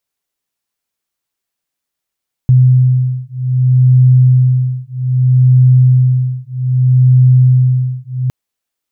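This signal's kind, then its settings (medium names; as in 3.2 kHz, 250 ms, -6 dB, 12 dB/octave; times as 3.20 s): beating tones 127 Hz, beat 0.63 Hz, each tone -9.5 dBFS 5.81 s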